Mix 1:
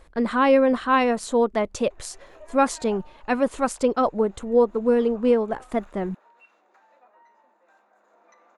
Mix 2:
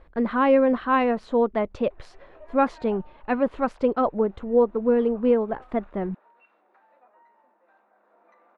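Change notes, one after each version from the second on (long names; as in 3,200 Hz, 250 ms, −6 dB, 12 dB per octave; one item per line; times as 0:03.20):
master: add high-frequency loss of the air 350 metres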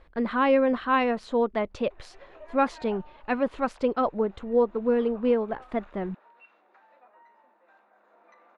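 speech −3.5 dB
master: add high-shelf EQ 2,400 Hz +10 dB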